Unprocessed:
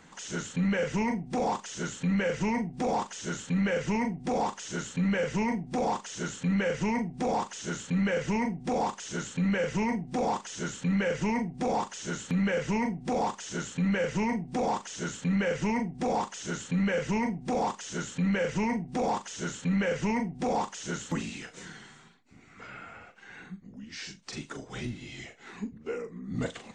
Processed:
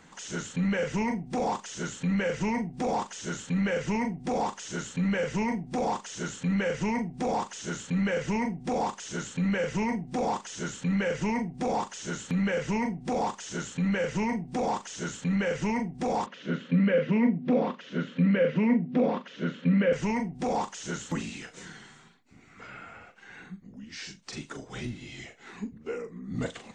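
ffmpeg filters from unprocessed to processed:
-filter_complex "[0:a]asettb=1/sr,asplit=3[s0][s1][s2];[s0]atrim=end=16.264[s3];[s1]atrim=start=16.26:end=19.93,asetpts=PTS-STARTPTS,afade=t=in:d=0.004:c=qsin,afade=t=out:st=3.666:d=0.004:c=qsin,highpass=f=160:w=0.5412,highpass=f=160:w=1.3066,equalizer=f=160:t=q:w=4:g=8,equalizer=f=250:t=q:w=4:g=9,equalizer=f=530:t=q:w=4:g=7,equalizer=f=830:t=q:w=4:g=-10,lowpass=f=3500:w=0.5412,lowpass=f=3500:w=1.3066[s4];[s2]atrim=start=19.926[s5];[s3][s4]acrossfade=d=0.004:c1=hsin:c2=qsin[s6];[s6][s5]acrossfade=d=0.004:c1=qsin:c2=hsin"

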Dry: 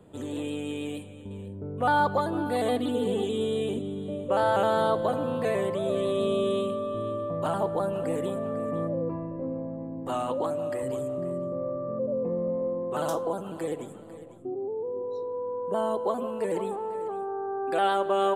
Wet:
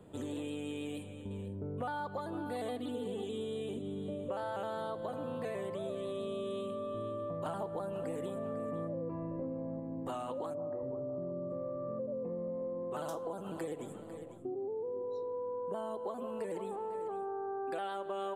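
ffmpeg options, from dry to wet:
-filter_complex "[0:a]asplit=3[s0][s1][s2];[s0]afade=t=out:st=10.53:d=0.02[s3];[s1]lowpass=f=1100:w=0.5412,lowpass=f=1100:w=1.3066,afade=t=in:st=10.53:d=0.02,afade=t=out:st=11.49:d=0.02[s4];[s2]afade=t=in:st=11.49:d=0.02[s5];[s3][s4][s5]amix=inputs=3:normalize=0,asplit=3[s6][s7][s8];[s6]atrim=end=7.462[s9];[s7]atrim=start=7.458:end=9.802,asetpts=PTS-STARTPTS,volume=1.58[s10];[s8]atrim=start=9.798[s11];[s9][s10]acrossfade=d=0.004:c1=hsin:c2=hsin[s12];[s12][s11]acrossfade=d=0.004:c1=hsin:c2=hsin,acompressor=threshold=0.02:ratio=6,volume=0.794"

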